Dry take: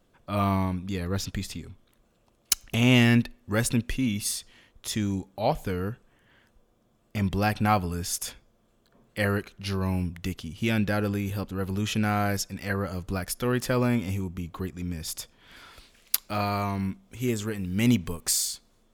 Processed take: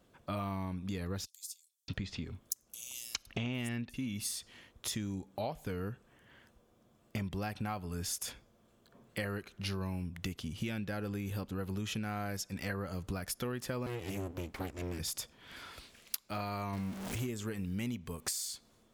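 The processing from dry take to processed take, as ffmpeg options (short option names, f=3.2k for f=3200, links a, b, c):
-filter_complex "[0:a]asettb=1/sr,asplit=3[a][b][c];[a]atrim=end=1.254[d];[b]atrim=start=1.25:end=3.94,asetpts=PTS-STARTPTS,afade=t=in:d=0.004:c=qsin,afade=t=out:st=2.686:d=0.004:c=qsin,acrossover=split=5700[e][f];[e]adelay=630[g];[g][f]amix=inputs=2:normalize=0,atrim=end_sample=118629[h];[c]atrim=start=3.936[i];[d][h]acrossfade=d=0.004:c1=hsin:c2=qsin[j];[j][i]acrossfade=d=0.004:c1=qsin:c2=hsin,asettb=1/sr,asplit=3[k][l][m];[k]atrim=end=13.864[n];[l]atrim=start=13.86:end=14.99,asetpts=PTS-STARTPTS,afade=t=in:d=0.004:c=qsin,afade=t=out:st=1.126:d=0.004:c=qsin,aeval=exprs='abs(val(0))':c=same[o];[m]atrim=start=14.986[p];[n][o]acrossfade=d=0.004:c1=hsin:c2=qsin[q];[q][p]acrossfade=d=0.004:c1=qsin:c2=hsin,asettb=1/sr,asplit=3[r][s][t];[r]atrim=end=16.734[u];[s]atrim=start=16.73:end=17.27,asetpts=PTS-STARTPTS,afade=t=in:d=0.004:c=qsin,afade=t=out:st=0.536:d=0.004:c=qsin,aeval=exprs='val(0)+0.5*0.0251*sgn(val(0))':c=same[v];[t]atrim=start=17.266[w];[u][v]acrossfade=d=0.004:c1=hsin:c2=qsin[x];[x][w]acrossfade=d=0.004:c1=qsin:c2=hsin,highpass=48,acompressor=threshold=-34dB:ratio=12"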